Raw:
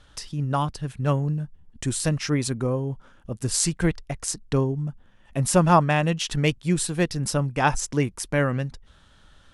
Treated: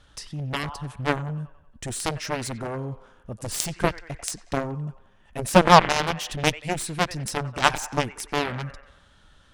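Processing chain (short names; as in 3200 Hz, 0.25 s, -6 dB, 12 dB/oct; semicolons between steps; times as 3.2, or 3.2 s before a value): band-limited delay 92 ms, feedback 52%, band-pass 1400 Hz, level -9 dB; added harmonics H 7 -13 dB, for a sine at -4 dBFS; gain +3.5 dB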